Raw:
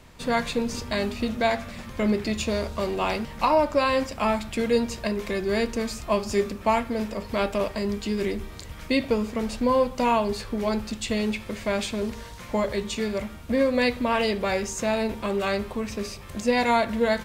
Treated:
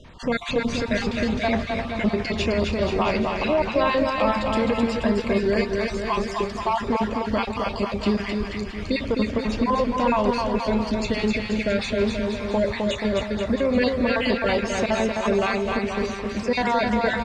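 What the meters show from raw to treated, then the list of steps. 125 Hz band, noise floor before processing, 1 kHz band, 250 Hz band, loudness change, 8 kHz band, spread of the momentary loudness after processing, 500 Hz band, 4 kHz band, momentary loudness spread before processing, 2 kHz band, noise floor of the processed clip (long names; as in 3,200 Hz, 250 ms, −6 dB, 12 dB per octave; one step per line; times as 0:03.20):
+4.5 dB, −41 dBFS, +1.5 dB, +3.5 dB, +2.5 dB, −3.5 dB, 5 LU, +2.0 dB, +2.0 dB, 8 LU, +3.0 dB, −32 dBFS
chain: time-frequency cells dropped at random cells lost 35%
low-pass filter 4,500 Hz 12 dB per octave
brickwall limiter −19 dBFS, peak gain reduction 8 dB
on a send: bouncing-ball delay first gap 260 ms, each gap 0.85×, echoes 5
on the sum: level +5 dB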